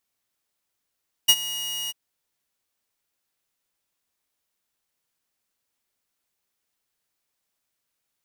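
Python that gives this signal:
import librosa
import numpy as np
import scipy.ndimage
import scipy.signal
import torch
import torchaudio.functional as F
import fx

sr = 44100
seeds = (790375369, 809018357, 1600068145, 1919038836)

y = fx.adsr_tone(sr, wave='saw', hz=2880.0, attack_ms=15.0, decay_ms=53.0, sustain_db=-17.5, held_s=0.62, release_ms=25.0, level_db=-8.0)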